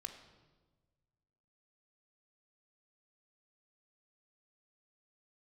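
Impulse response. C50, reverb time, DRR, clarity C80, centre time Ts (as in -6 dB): 8.5 dB, 1.3 s, 5.5 dB, 10.0 dB, 21 ms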